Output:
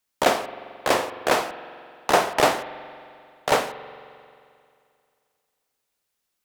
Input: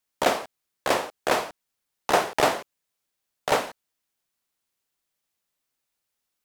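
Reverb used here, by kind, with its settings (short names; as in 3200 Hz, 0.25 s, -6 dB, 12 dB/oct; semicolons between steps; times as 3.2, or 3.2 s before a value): spring tank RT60 2.4 s, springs 44 ms, chirp 75 ms, DRR 12.5 dB; gain +2.5 dB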